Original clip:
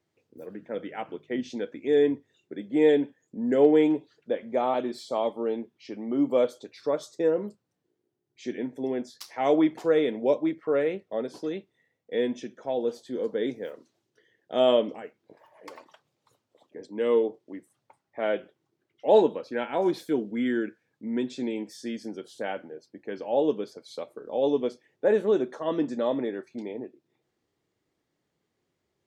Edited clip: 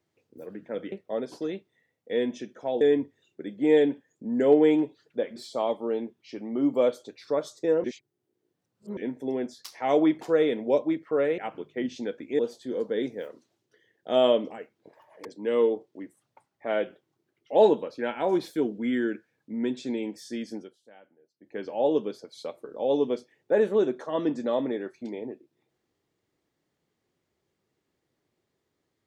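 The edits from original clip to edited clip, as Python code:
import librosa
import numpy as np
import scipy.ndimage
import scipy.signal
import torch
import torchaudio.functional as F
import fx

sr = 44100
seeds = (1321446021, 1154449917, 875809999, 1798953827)

y = fx.edit(x, sr, fx.swap(start_s=0.92, length_s=1.01, other_s=10.94, other_length_s=1.89),
    fx.cut(start_s=4.48, length_s=0.44),
    fx.reverse_span(start_s=7.4, length_s=1.13),
    fx.cut(start_s=15.69, length_s=1.09),
    fx.fade_down_up(start_s=22.1, length_s=0.98, db=-21.0, fade_s=0.24, curve='qua'), tone=tone)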